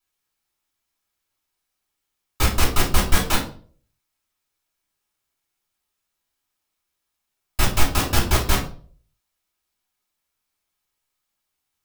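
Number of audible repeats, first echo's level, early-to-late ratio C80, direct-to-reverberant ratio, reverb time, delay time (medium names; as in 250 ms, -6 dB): no echo, no echo, 13.5 dB, -4.5 dB, 0.45 s, no echo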